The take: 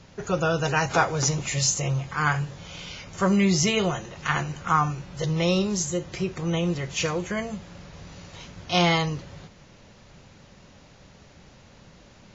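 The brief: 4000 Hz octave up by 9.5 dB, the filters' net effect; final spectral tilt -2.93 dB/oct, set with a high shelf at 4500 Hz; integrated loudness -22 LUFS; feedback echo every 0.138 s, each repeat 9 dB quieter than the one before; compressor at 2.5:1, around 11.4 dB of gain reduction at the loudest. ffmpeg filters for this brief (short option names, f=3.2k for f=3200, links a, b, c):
-af "equalizer=f=4k:t=o:g=8.5,highshelf=f=4.5k:g=8,acompressor=threshold=-29dB:ratio=2.5,aecho=1:1:138|276|414|552:0.355|0.124|0.0435|0.0152,volume=7dB"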